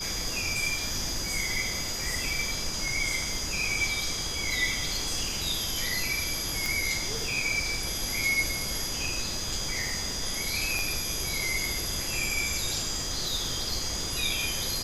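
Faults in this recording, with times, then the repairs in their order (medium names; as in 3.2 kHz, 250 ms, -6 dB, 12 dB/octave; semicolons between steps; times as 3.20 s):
whine 4.9 kHz -35 dBFS
6.66 s: pop
10.79 s: pop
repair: de-click; band-stop 4.9 kHz, Q 30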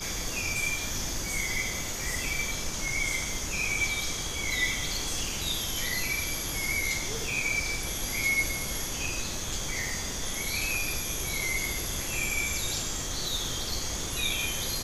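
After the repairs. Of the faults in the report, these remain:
10.79 s: pop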